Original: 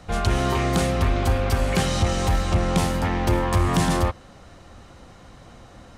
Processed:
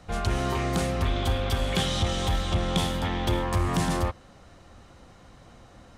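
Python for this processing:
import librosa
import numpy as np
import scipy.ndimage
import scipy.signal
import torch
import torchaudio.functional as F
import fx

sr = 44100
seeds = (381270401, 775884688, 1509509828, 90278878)

y = fx.peak_eq(x, sr, hz=3400.0, db=13.5, octaves=0.27, at=(1.05, 3.43))
y = y * 10.0 ** (-5.0 / 20.0)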